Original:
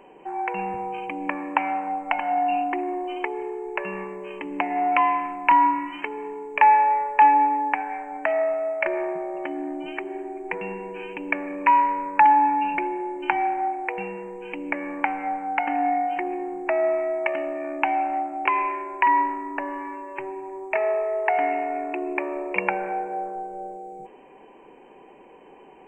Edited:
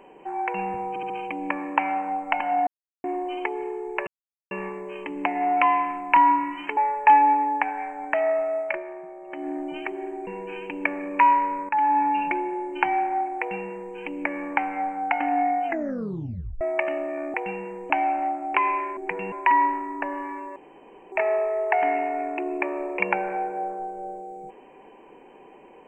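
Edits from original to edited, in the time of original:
0:00.89: stutter 0.07 s, 4 plays
0:02.46–0:02.83: silence
0:03.86: splice in silence 0.44 s
0:06.12–0:06.89: remove
0:08.73–0:09.61: duck −10.5 dB, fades 0.22 s
0:10.39–0:10.74: move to 0:18.88
0:12.16–0:12.52: fade in, from −12.5 dB
0:13.86–0:14.42: duplicate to 0:17.81
0:16.12: tape stop 0.96 s
0:20.12–0:20.68: fill with room tone

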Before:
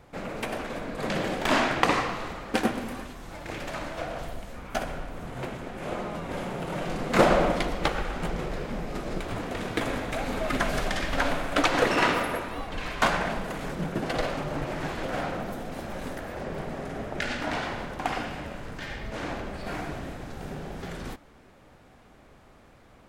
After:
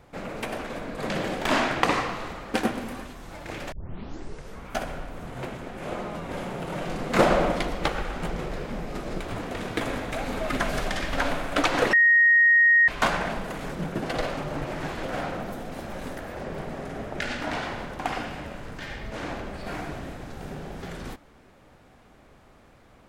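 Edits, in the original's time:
0:03.72: tape start 0.95 s
0:11.93–0:12.88: beep over 1,870 Hz −14 dBFS

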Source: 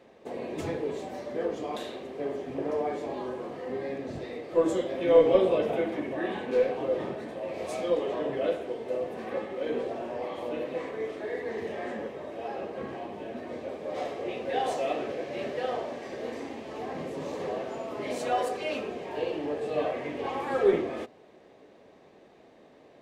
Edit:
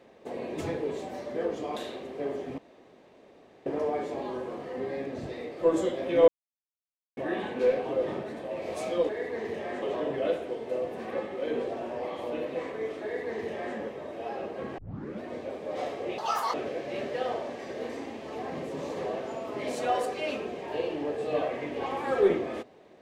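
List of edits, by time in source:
0:02.58: splice in room tone 1.08 s
0:05.20–0:06.09: silence
0:11.22–0:11.95: duplicate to 0:08.01
0:12.97: tape start 0.44 s
0:14.37–0:14.97: play speed 167%

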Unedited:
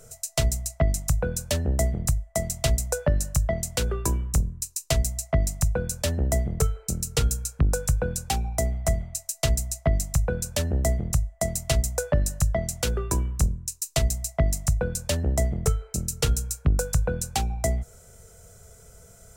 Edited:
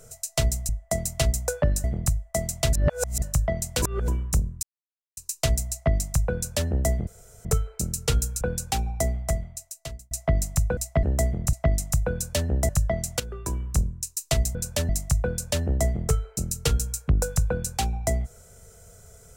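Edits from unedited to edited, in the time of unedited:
0:00.69–0:01.85: swap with 0:11.19–0:12.34
0:02.74–0:03.23: reverse
0:03.83–0:04.09: reverse
0:04.64: splice in silence 0.54 s
0:06.54: splice in room tone 0.38 s
0:07.50–0:07.99: remove
0:08.66–0:09.69: fade out
0:10.35–0:10.69: swap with 0:14.20–0:14.46
0:12.85–0:13.48: fade in, from −13 dB

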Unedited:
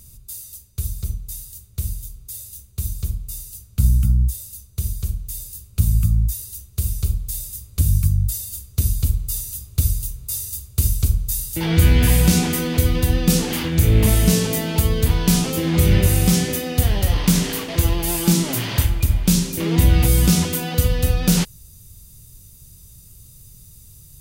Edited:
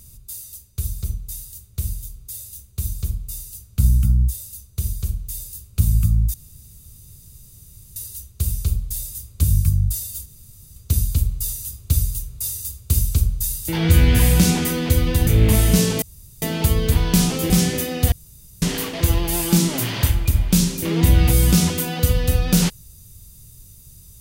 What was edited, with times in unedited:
0:06.34: splice in room tone 1.62 s
0:08.64: splice in room tone 0.50 s
0:13.15–0:13.81: remove
0:14.56: splice in room tone 0.40 s
0:15.64–0:16.25: remove
0:16.87–0:17.37: fill with room tone

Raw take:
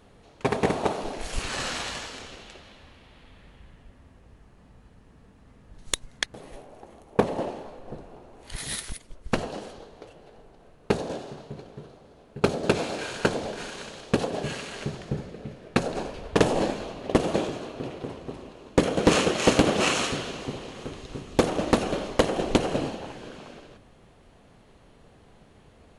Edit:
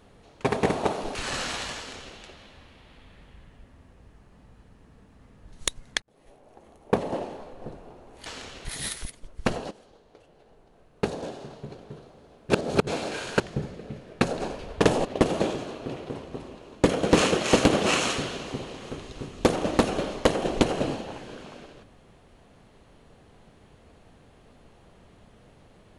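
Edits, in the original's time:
0:01.15–0:01.41: remove
0:02.03–0:02.42: duplicate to 0:08.52
0:06.28–0:07.78: fade in equal-power
0:09.58–0:11.62: fade in, from −14.5 dB
0:12.37–0:12.74: reverse
0:13.27–0:14.95: remove
0:16.60–0:16.99: remove

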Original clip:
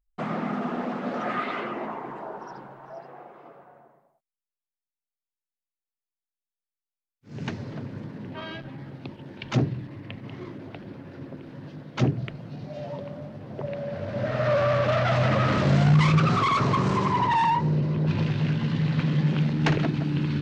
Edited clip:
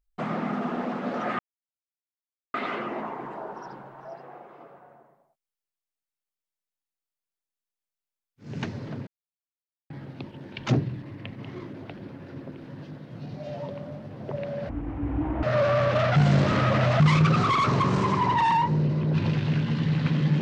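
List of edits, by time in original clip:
0:01.39: splice in silence 1.15 s
0:07.92–0:08.75: silence
0:11.96–0:12.41: remove
0:13.99–0:14.36: play speed 50%
0:15.09–0:15.93: reverse

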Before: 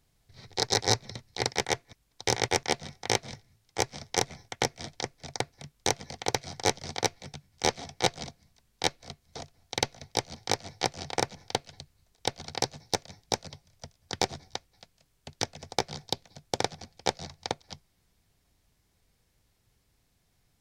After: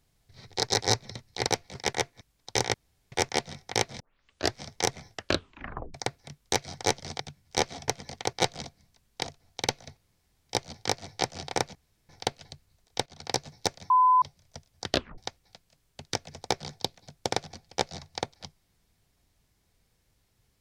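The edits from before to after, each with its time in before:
0:02.46: splice in room tone 0.38 s
0:03.34: tape start 0.55 s
0:04.44: tape stop 0.84 s
0:05.89–0:06.34: move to 0:07.95
0:06.99–0:07.27: move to 0:01.47
0:08.85–0:09.37: remove
0:10.11: splice in room tone 0.52 s
0:11.37: splice in room tone 0.34 s
0:12.34–0:12.61: fade in, from −14 dB
0:13.18–0:13.50: beep over 1,010 Hz −16.5 dBFS
0:14.17: tape stop 0.29 s

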